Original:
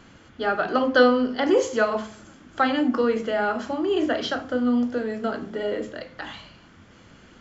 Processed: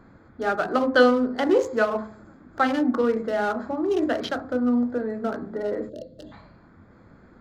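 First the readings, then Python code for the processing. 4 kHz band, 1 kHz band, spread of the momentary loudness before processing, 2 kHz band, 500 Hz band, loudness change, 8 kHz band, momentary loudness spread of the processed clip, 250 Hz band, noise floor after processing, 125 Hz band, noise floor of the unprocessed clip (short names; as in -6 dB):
-4.0 dB, -0.5 dB, 17 LU, -1.0 dB, 0.0 dB, -0.5 dB, n/a, 13 LU, 0.0 dB, -53 dBFS, 0.0 dB, -52 dBFS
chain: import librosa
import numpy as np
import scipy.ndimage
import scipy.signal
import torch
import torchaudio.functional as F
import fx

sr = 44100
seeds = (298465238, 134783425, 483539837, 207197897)

y = fx.wiener(x, sr, points=15)
y = fx.spec_box(y, sr, start_s=5.89, length_s=0.43, low_hz=670.0, high_hz=2700.0, gain_db=-25)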